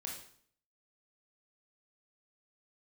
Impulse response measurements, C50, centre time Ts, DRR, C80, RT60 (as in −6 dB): 4.0 dB, 37 ms, −1.5 dB, 8.0 dB, 0.55 s